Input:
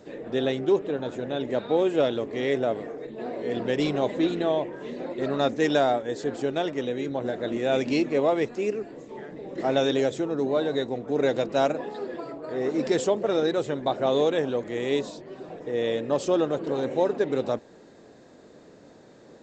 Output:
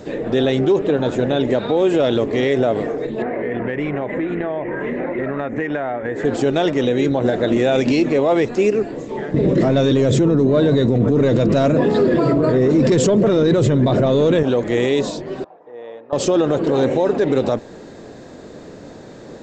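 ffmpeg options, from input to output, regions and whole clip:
-filter_complex "[0:a]asettb=1/sr,asplit=3[s0][s1][s2];[s0]atrim=end=3.224[s3];[s1]atrim=start=3.22:end=6.25,asetpts=PTS-STARTPTS,afade=t=in:d=0.004:c=qsin,afade=t=out:st=3.026:d=0.004:c=qsin,highshelf=f=3000:t=q:w=3:g=-14,acompressor=threshold=0.0251:ratio=8:attack=3.2:release=140:knee=1:detection=peak[s4];[s2]atrim=start=6.246[s5];[s3][s4]acrossfade=d=0.004:c1=hsin:c2=qsin[s6];[s6][s5]acrossfade=d=0.004:c1=qsin:c2=hsin,asettb=1/sr,asplit=3[s7][s8][s9];[s7]atrim=end=9.344[s10];[s8]atrim=start=9.34:end=14.43,asetpts=PTS-STARTPTS,afade=t=in:d=0.004:c=qsin,afade=t=out:st=5.086:d=0.004:c=qsin,equalizer=f=130:w=0.56:g=11.5,bandreject=f=800:w=5.3,acontrast=82[s11];[s9]atrim=start=14.426[s12];[s10][s11]acrossfade=d=0.004:c1=hsin:c2=qsin[s13];[s13][s12]acrossfade=d=0.004:c1=qsin:c2=hsin,asettb=1/sr,asplit=3[s14][s15][s16];[s14]atrim=end=15.444[s17];[s15]atrim=start=15.44:end=16.13,asetpts=PTS-STARTPTS,afade=t=in:d=0.004:c=qsin,afade=t=out:st=0.686:d=0.004:c=qsin,lowpass=f=910:t=q:w=2.3,aderivative[s18];[s16]atrim=start=16.126[s19];[s17][s18]acrossfade=d=0.004:c1=hsin:c2=qsin[s20];[s20][s19]acrossfade=d=0.004:c1=qsin:c2=hsin,lowshelf=f=110:g=8.5,alimiter=level_in=9.44:limit=0.891:release=50:level=0:latency=1,volume=0.447"

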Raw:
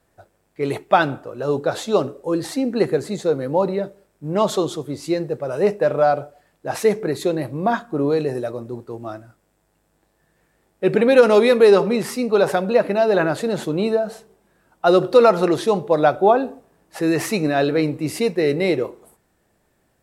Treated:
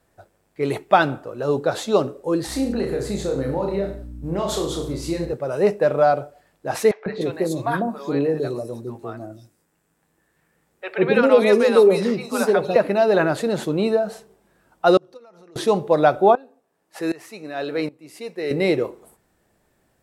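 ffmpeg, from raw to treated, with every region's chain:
-filter_complex "[0:a]asettb=1/sr,asplit=3[s0][s1][s2];[s0]atrim=end=2.474[s3];[s1]atrim=start=2.47:end=5.33,asetpts=PTS-STARTPTS,afade=t=in:d=0.004:c=qsin,afade=t=out:st=2.856:d=0.004:c=qsin,aeval=exprs='val(0)+0.0126*(sin(2*PI*60*n/s)+sin(2*PI*2*60*n/s)/2+sin(2*PI*3*60*n/s)/3+sin(2*PI*4*60*n/s)/4+sin(2*PI*5*60*n/s)/5)':c=same,acompressor=threshold=0.0891:ratio=6:attack=3.2:release=140:knee=1:detection=peak,aecho=1:1:30|63|99.3|139.2|183.2:0.631|0.398|0.251|0.158|0.1,atrim=end_sample=126126[s4];[s2]atrim=start=5.326[s5];[s3][s4]acrossfade=d=0.004:c1=hsin:c2=qsin[s6];[s6][s5]acrossfade=d=0.004:c1=qsin:c2=hsin,asettb=1/sr,asplit=3[s7][s8][s9];[s7]atrim=end=6.914[s10];[s8]atrim=start=6.91:end=12.76,asetpts=PTS-STARTPTS,afade=t=in:d=0.004:c=qsin,afade=t=out:st=5.846:d=0.004:c=qsin,bandreject=f=50:t=h:w=6,bandreject=f=100:t=h:w=6,bandreject=f=150:t=h:w=6,bandreject=f=200:t=h:w=6,bandreject=f=250:t=h:w=6,bandreject=f=300:t=h:w=6,bandreject=f=350:t=h:w=6,acrossover=split=660|4100[s11][s12][s13];[s11]adelay=150[s14];[s13]adelay=300[s15];[s14][s12][s15]amix=inputs=3:normalize=0,atrim=end_sample=257985[s16];[s9]atrim=start=12.756[s17];[s10][s16]acrossfade=d=0.004:c1=hsin:c2=qsin[s18];[s18][s17]acrossfade=d=0.004:c1=qsin:c2=hsin,asettb=1/sr,asplit=3[s19][s20][s21];[s19]atrim=end=14.974[s22];[s20]atrim=start=14.97:end=15.56,asetpts=PTS-STARTPTS,afade=t=in:d=0.004:c=qsin,afade=t=out:st=0.586:d=0.004:c=qsin,equalizer=f=5900:w=5.3:g=10.5,acompressor=threshold=0.0708:ratio=12:attack=3.2:release=140:knee=1:detection=peak,agate=range=0.0891:threshold=0.0708:ratio=16:release=100:detection=peak[s23];[s21]atrim=start=15.556[s24];[s22][s23]acrossfade=d=0.004:c1=hsin:c2=qsin[s25];[s25][s24]acrossfade=d=0.004:c1=qsin:c2=hsin,asettb=1/sr,asplit=3[s26][s27][s28];[s26]atrim=end=16.354[s29];[s27]atrim=start=16.35:end=18.51,asetpts=PTS-STARTPTS,afade=t=in:d=0.004:c=qsin,afade=t=out:st=2.156:d=0.004:c=qsin,highpass=f=370:p=1,aeval=exprs='val(0)*pow(10,-20*if(lt(mod(-1.3*n/s,1),2*abs(-1.3)/1000),1-mod(-1.3*n/s,1)/(2*abs(-1.3)/1000),(mod(-1.3*n/s,1)-2*abs(-1.3)/1000)/(1-2*abs(-1.3)/1000))/20)':c=same[s30];[s28]atrim=start=18.506[s31];[s29][s30]acrossfade=d=0.004:c1=hsin:c2=qsin[s32];[s32][s31]acrossfade=d=0.004:c1=qsin:c2=hsin"

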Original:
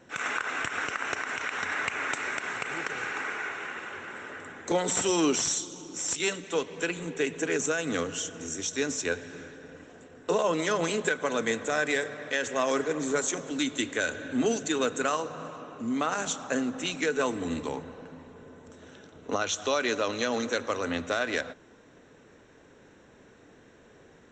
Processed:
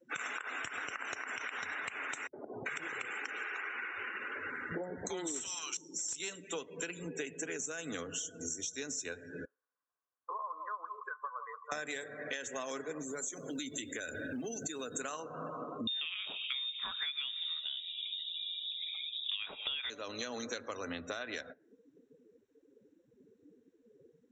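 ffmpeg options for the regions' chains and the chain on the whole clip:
-filter_complex "[0:a]asettb=1/sr,asplit=3[s0][s1][s2];[s0]atrim=end=2.274[s3];[s1]atrim=start=2.27:end=5.77,asetpts=PTS-STARTPTS,afade=t=in:d=0.004:c=qsin,afade=t=out:st=3.496:d=0.004:c=qsin,acrossover=split=180|780[s4][s5][s6];[s5]adelay=60[s7];[s6]adelay=390[s8];[s4][s7][s8]amix=inputs=3:normalize=0,atrim=end_sample=154350,asoftclip=type=hard:threshold=0.158[s9];[s2]atrim=start=5.766[s10];[s3][s9]acrossfade=d=0.004:c1=hsin:c2=qsin[s11];[s11][s10]acrossfade=d=0.004:c1=qsin:c2=hsin,asettb=1/sr,asplit=3[s12][s13][s14];[s12]atrim=end=9.454[s15];[s13]atrim=start=9.45:end=11.72,asetpts=PTS-STARTPTS,afade=t=in:d=0.004:c=qsin,afade=t=out:st=2.266:d=0.004:c=qsin,bandpass=f=1100:t=q:w=8.5,aecho=1:1:170:0.335,atrim=end_sample=100107[s16];[s14]atrim=start=11.716[s17];[s15][s16]acrossfade=d=0.004:c1=hsin:c2=qsin[s18];[s18][s17]acrossfade=d=0.004:c1=qsin:c2=hsin,asettb=1/sr,asplit=3[s19][s20][s21];[s19]atrim=end=13.024[s22];[s20]atrim=start=13.02:end=14.96,asetpts=PTS-STARTPTS,afade=t=in:d=0.004:c=qsin,afade=t=out:st=1.936:d=0.004:c=qsin,lowshelf=f=92:g=4.5,acompressor=threshold=0.02:ratio=3:attack=3.2:release=140:knee=1:detection=peak,acrusher=bits=3:mode=log:mix=0:aa=0.000001[s23];[s21]atrim=start=14.956[s24];[s22][s23]acrossfade=d=0.004:c1=hsin:c2=qsin[s25];[s25][s24]acrossfade=d=0.004:c1=qsin:c2=hsin,asettb=1/sr,asplit=3[s26][s27][s28];[s26]atrim=end=15.874[s29];[s27]atrim=start=15.87:end=19.9,asetpts=PTS-STARTPTS,afade=t=in:d=0.004:c=qsin,afade=t=out:st=4.026:d=0.004:c=qsin,lowpass=f=3300:t=q:w=0.5098,lowpass=f=3300:t=q:w=0.6013,lowpass=f=3300:t=q:w=0.9,lowpass=f=3300:t=q:w=2.563,afreqshift=-3900,acontrast=88[s30];[s28]atrim=start=19.896[s31];[s29][s30]acrossfade=d=0.004:c1=hsin:c2=qsin[s32];[s32][s31]acrossfade=d=0.004:c1=qsin:c2=hsin,afftdn=nr=34:nf=-42,highshelf=f=3500:g=11,acompressor=threshold=0.01:ratio=10,volume=1.41"

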